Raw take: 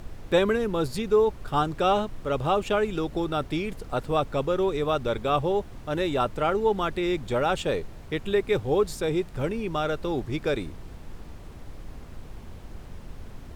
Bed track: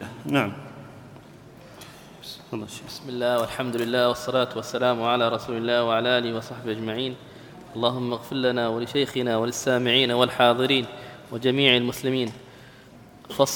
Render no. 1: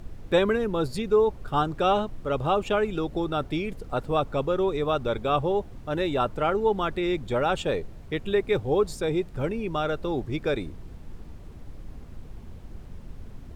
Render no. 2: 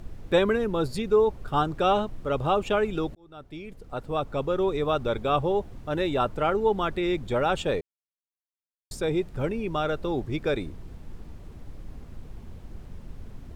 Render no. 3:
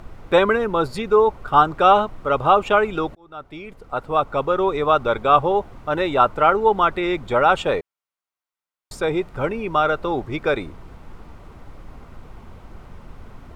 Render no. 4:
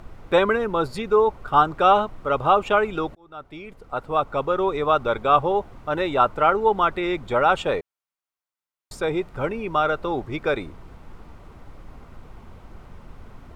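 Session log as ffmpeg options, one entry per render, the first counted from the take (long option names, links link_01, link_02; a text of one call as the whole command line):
ffmpeg -i in.wav -af "afftdn=noise_reduction=6:noise_floor=-43" out.wav
ffmpeg -i in.wav -filter_complex "[0:a]asplit=4[link_01][link_02][link_03][link_04];[link_01]atrim=end=3.15,asetpts=PTS-STARTPTS,afade=type=out:start_time=3.146:duration=0.004:curve=hsin[link_05];[link_02]atrim=start=3.15:end=7.81,asetpts=PTS-STARTPTS,afade=type=in:duration=1.54,afade=type=out:start_time=4.656:duration=0.004:curve=hsin[link_06];[link_03]atrim=start=7.81:end=8.91,asetpts=PTS-STARTPTS,volume=0[link_07];[link_04]atrim=start=8.91,asetpts=PTS-STARTPTS,afade=type=in:duration=0.004:curve=hsin[link_08];[link_05][link_06][link_07][link_08]concat=n=4:v=0:a=1" out.wav
ffmpeg -i in.wav -af "equalizer=frequency=1200:width=0.56:gain=12.5,bandreject=frequency=1700:width=11" out.wav
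ffmpeg -i in.wav -af "volume=-2.5dB" out.wav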